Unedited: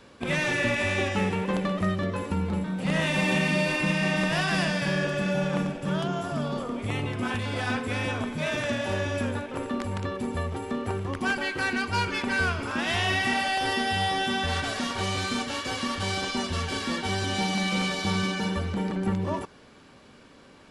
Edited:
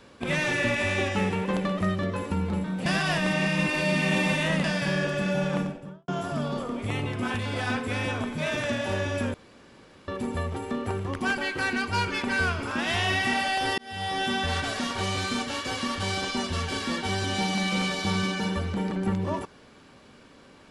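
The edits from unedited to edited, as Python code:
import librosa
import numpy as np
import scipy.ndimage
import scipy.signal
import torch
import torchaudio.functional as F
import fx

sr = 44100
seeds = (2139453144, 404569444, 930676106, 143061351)

y = fx.studio_fade_out(x, sr, start_s=5.51, length_s=0.57)
y = fx.edit(y, sr, fx.reverse_span(start_s=2.86, length_s=1.78),
    fx.room_tone_fill(start_s=9.34, length_s=0.74),
    fx.fade_in_span(start_s=13.78, length_s=0.47), tone=tone)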